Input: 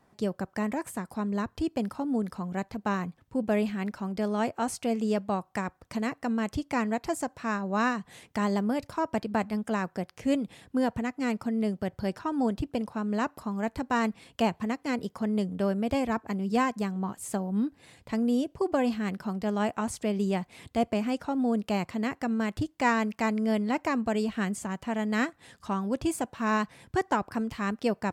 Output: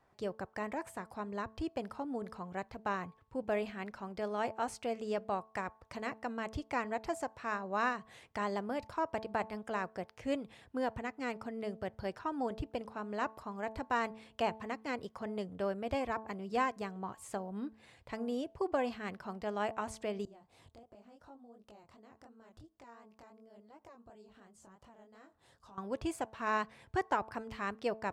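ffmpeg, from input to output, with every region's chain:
-filter_complex "[0:a]asettb=1/sr,asplit=3[a][b][c];[a]atrim=end=20.254[d];[b]atrim=start=20.25:end=25.78,asetpts=PTS-STARTPTS,afade=t=in:d=0.004:c=qsin,afade=t=out:st=5.526:d=0.004:c=qsin,acompressor=threshold=-43dB:ratio=5:attack=3.2:release=140:knee=1:detection=peak,equalizer=f=2.2k:t=o:w=1.1:g=-10.5,flanger=delay=18:depth=7.9:speed=2.8[e];[c]atrim=start=25.776[f];[d][e]acrossfade=d=0.004:c1=hsin:c2=qsin[g];[g][f]acrossfade=d=0.004:c1=qsin:c2=hsin,lowpass=f=3.3k:p=1,equalizer=f=210:t=o:w=1.2:g=-10.5,bandreject=f=220:t=h:w=4,bandreject=f=440:t=h:w=4,bandreject=f=660:t=h:w=4,bandreject=f=880:t=h:w=4,bandreject=f=1.1k:t=h:w=4,volume=-3.5dB"

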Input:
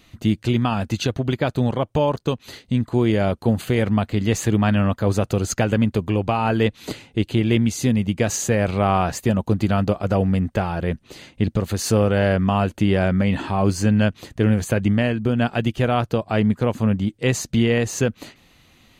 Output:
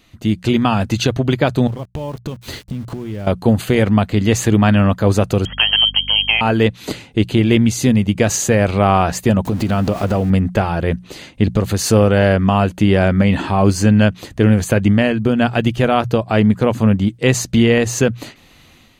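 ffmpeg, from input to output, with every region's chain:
-filter_complex "[0:a]asettb=1/sr,asplit=3[a][b][c];[a]atrim=end=1.674[d];[b]atrim=start=1.67:end=3.27,asetpts=PTS-STARTPTS,afade=t=in:d=0.004:c=qsin,afade=t=out:st=1.596:d=0.004:c=qsin,lowshelf=f=200:g=10,acompressor=threshold=-29dB:ratio=8:attack=3.2:release=140:knee=1:detection=peak,aeval=exprs='val(0)*gte(abs(val(0)),0.00501)':c=same[e];[c]atrim=start=3.266[f];[d][e]acrossfade=d=0.004:c1=hsin:c2=qsin[g];[g][f]acrossfade=d=0.004:c1=qsin:c2=hsin,asettb=1/sr,asplit=3[h][i][j];[h]atrim=end=5.454[k];[i]atrim=start=5.45:end=6.41,asetpts=PTS-STARTPTS,afade=t=in:d=0.004:c=qsin,afade=t=out:st=0.956:d=0.004:c=qsin,lowpass=f=2.8k:t=q:w=0.5098,lowpass=f=2.8k:t=q:w=0.6013,lowpass=f=2.8k:t=q:w=0.9,lowpass=f=2.8k:t=q:w=2.563,afreqshift=-3300,aeval=exprs='val(0)+0.0141*(sin(2*PI*50*n/s)+sin(2*PI*2*50*n/s)/2+sin(2*PI*3*50*n/s)/3+sin(2*PI*4*50*n/s)/4+sin(2*PI*5*50*n/s)/5)':c=same[l];[j]atrim=start=6.406[m];[k][l]acrossfade=d=0.004:c1=hsin:c2=qsin[n];[n][m]acrossfade=d=0.004:c1=qsin:c2=hsin,asettb=1/sr,asplit=3[o][p][q];[o]atrim=end=9.454[r];[p]atrim=start=9.45:end=10.3,asetpts=PTS-STARTPTS,afade=t=in:d=0.004:c=qsin,afade=t=out:st=0.846:d=0.004:c=qsin,aeval=exprs='val(0)+0.5*0.0224*sgn(val(0))':c=same,equalizer=f=250:w=5.1:g=4.5,acompressor=threshold=-20dB:ratio=4:attack=3.2:release=140:knee=1:detection=peak[s];[q]atrim=start=10.296[t];[r][s]acrossfade=d=0.004:c1=hsin:c2=qsin[u];[u][t]acrossfade=d=0.004:c1=qsin:c2=hsin,bandreject=f=60:t=h:w=6,bandreject=f=120:t=h:w=6,bandreject=f=180:t=h:w=6,dynaudnorm=f=140:g=5:m=8dB"

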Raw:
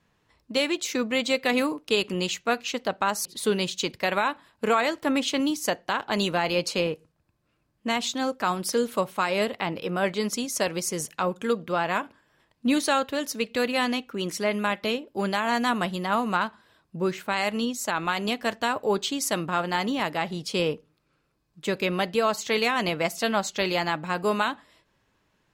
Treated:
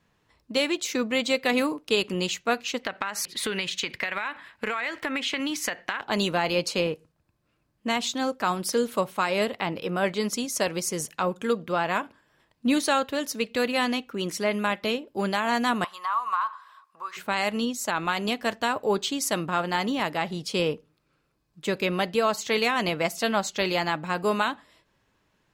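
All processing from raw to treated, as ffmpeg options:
-filter_complex "[0:a]asettb=1/sr,asplit=3[a][b][c];[a]atrim=end=2.834[d];[b]atrim=start=2.83:end=6.01,asetpts=PTS-STARTPTS,afade=t=in:d=0.004:c=qsin,afade=t=out:st=3.176:d=0.004:c=qsin,equalizer=f=2k:w=0.92:g=15,acompressor=threshold=-24dB:ratio=16:attack=3.2:release=140:knee=1:detection=peak[e];[c]atrim=start=6.006[f];[d][e]acrossfade=d=0.004:c1=hsin:c2=qsin[g];[g][f]acrossfade=d=0.004:c1=qsin:c2=hsin,asettb=1/sr,asplit=3[h][i][j];[h]atrim=end=15.844[k];[i]atrim=start=15.84:end=17.17,asetpts=PTS-STARTPTS,afade=t=in:d=0.004:c=qsin,afade=t=out:st=1.326:d=0.004:c=qsin,acompressor=threshold=-32dB:ratio=12:attack=3.2:release=140:knee=1:detection=peak,highpass=f=1.1k:t=q:w=11[l];[j]atrim=start=17.166[m];[k][l]acrossfade=d=0.004:c1=hsin:c2=qsin[n];[n][m]acrossfade=d=0.004:c1=qsin:c2=hsin"

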